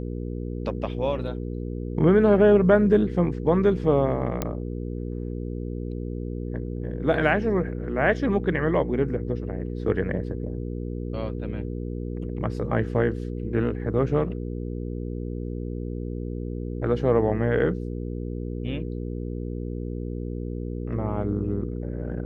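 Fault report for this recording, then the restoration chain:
hum 60 Hz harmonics 8 -31 dBFS
4.42 pop -11 dBFS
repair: de-click; de-hum 60 Hz, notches 8

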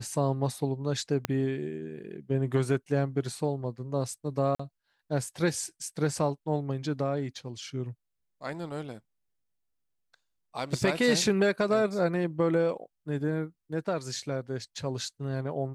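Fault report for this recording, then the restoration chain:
1.25 pop -13 dBFS
4.55–4.59 gap 45 ms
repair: de-click; interpolate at 4.55, 45 ms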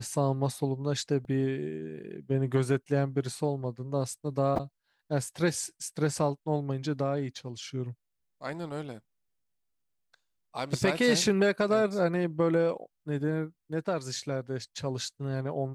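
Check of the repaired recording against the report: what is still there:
1.25 pop

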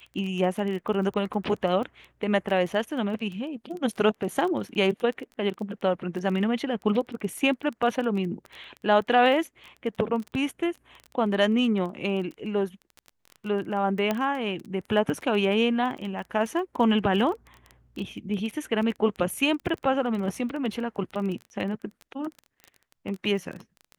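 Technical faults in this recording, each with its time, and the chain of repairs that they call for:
crackle 20/s -32 dBFS
14.11 pop -12 dBFS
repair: de-click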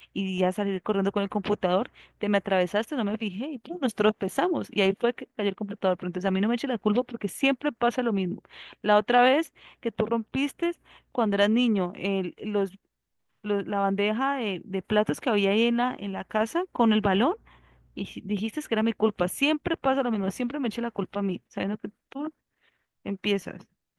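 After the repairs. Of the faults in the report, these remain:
none

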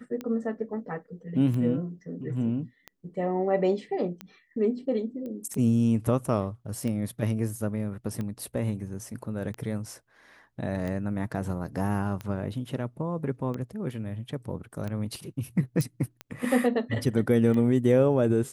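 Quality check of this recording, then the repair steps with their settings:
tick 45 rpm -22 dBFS
5.26 pop -28 dBFS
15.81 pop -17 dBFS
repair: de-click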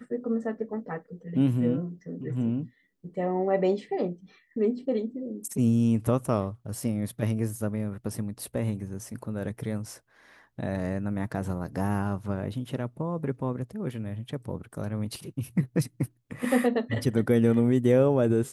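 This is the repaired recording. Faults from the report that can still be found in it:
none

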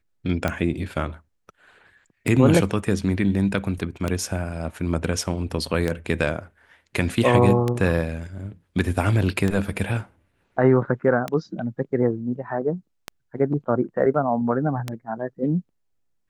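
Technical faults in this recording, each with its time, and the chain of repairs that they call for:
tick 33 1/3 rpm -10 dBFS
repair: de-click

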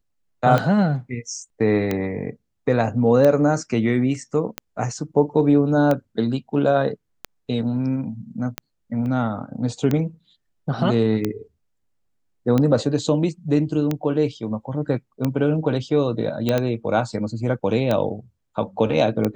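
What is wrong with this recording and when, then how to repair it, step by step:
tick 45 rpm -9 dBFS
9.06 gap 2.6 ms
16.49 pop -8 dBFS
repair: de-click; interpolate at 9.06, 2.6 ms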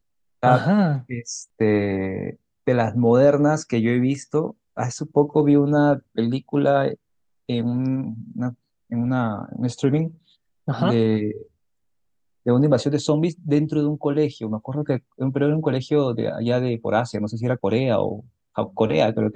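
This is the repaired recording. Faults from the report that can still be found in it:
none

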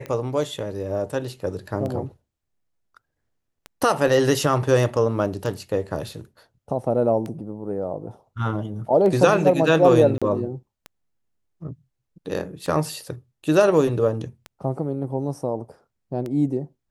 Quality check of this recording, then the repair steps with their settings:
tick 33 1/3 rpm -19 dBFS
10.18–10.22 gap 36 ms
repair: de-click; interpolate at 10.18, 36 ms

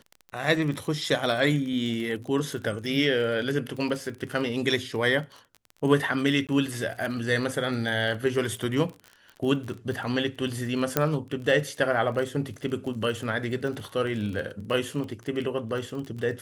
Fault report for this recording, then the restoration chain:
crackle 29/s -33 dBFS
6.47–6.49 gap 17 ms
10.97 pop -6 dBFS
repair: de-click; interpolate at 6.47, 17 ms

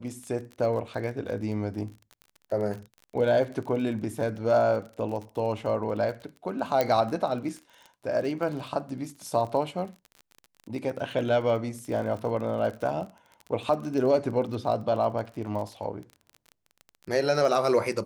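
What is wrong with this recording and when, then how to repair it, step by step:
crackle 35/s -35 dBFS
6.81 pop -11 dBFS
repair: de-click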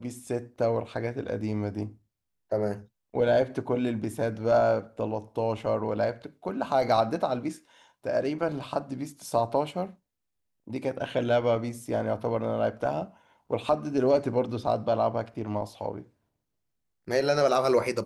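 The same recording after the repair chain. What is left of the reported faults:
6.81 pop

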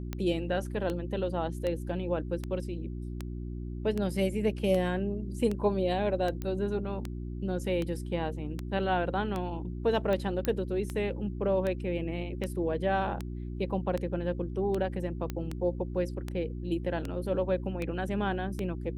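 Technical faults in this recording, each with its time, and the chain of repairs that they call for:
hum 60 Hz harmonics 6 -37 dBFS
tick 78 rpm -20 dBFS
6.42 pop -22 dBFS
10.45 pop -15 dBFS
15.3 pop -20 dBFS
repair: de-click; de-hum 60 Hz, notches 6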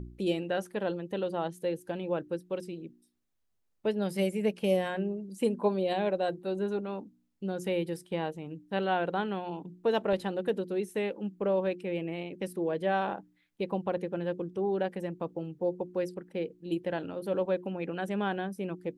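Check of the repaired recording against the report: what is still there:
10.45 pop

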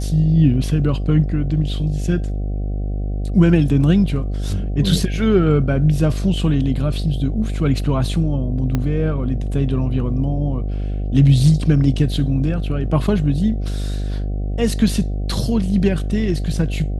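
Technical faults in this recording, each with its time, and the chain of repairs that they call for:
buzz 50 Hz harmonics 15 -22 dBFS
8.75 pop -8 dBFS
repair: de-click; de-hum 50 Hz, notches 15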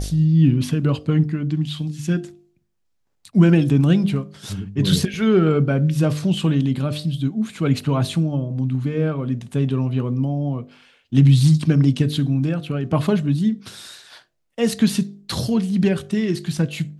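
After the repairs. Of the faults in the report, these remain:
8.75 pop

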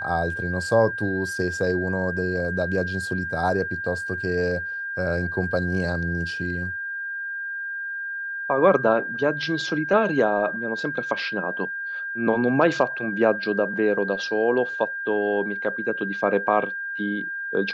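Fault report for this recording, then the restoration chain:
tone 1600 Hz -28 dBFS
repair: notch 1600 Hz, Q 30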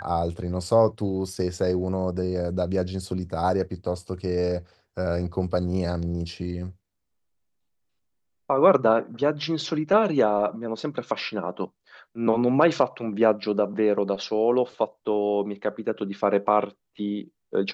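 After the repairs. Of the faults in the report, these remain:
none

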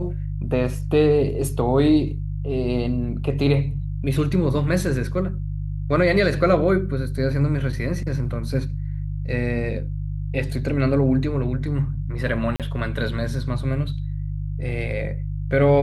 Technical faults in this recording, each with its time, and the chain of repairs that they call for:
hum 50 Hz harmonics 3 -27 dBFS
12.56–12.6 gap 37 ms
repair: de-hum 50 Hz, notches 3; interpolate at 12.56, 37 ms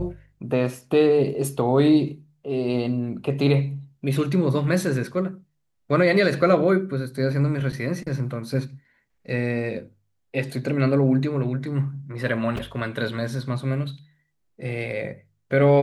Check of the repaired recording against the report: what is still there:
none

